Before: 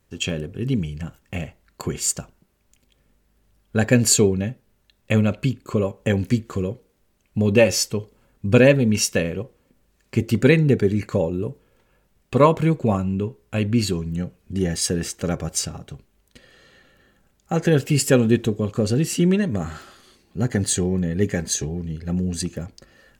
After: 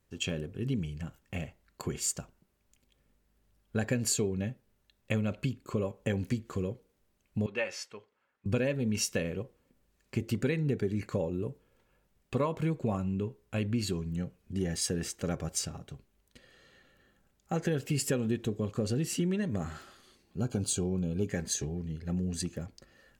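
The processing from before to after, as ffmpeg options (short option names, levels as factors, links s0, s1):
-filter_complex "[0:a]asettb=1/sr,asplit=3[s0][s1][s2];[s0]atrim=end=7.464[s3];[s1]atrim=start=7.46:end=8.46,asetpts=PTS-STARTPTS,afade=t=in:d=0.004:c=qsin,afade=t=out:st=0.996:d=0.004:c=qsin,bandpass=f=1600:t=q:w=1.1[s4];[s2]atrim=start=8.456[s5];[s3][s4]acrossfade=d=0.004:c1=hsin:c2=qsin[s6];[s6][s5]acrossfade=d=0.004:c1=qsin:c2=hsin,asettb=1/sr,asplit=3[s7][s8][s9];[s7]atrim=end=20.404[s10];[s8]atrim=start=20.4:end=21.28,asetpts=PTS-STARTPTS,afade=t=in:d=0.004:c=qsin,afade=t=out:st=0.876:d=0.004:c=qsin,asuperstop=centerf=1900:order=12:qfactor=3.2[s11];[s9]atrim=start=21.276[s12];[s10][s11]acrossfade=d=0.004:c1=hsin:c2=qsin[s13];[s13][s12]acrossfade=d=0.004:c1=qsin:c2=hsin,acompressor=threshold=0.126:ratio=6,volume=0.398"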